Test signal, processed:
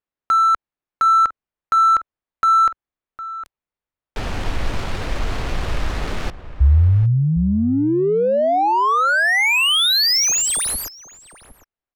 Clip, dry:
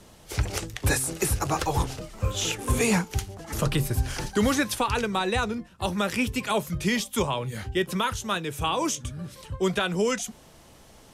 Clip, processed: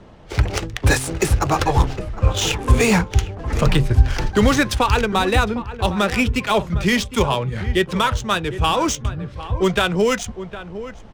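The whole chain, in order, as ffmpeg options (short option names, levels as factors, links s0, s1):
-filter_complex "[0:a]adynamicsmooth=sensitivity=6.5:basefreq=2200,asubboost=boost=2.5:cutoff=93,asplit=2[s0][s1];[s1]adelay=758,volume=0.224,highshelf=f=4000:g=-17.1[s2];[s0][s2]amix=inputs=2:normalize=0,volume=2.51"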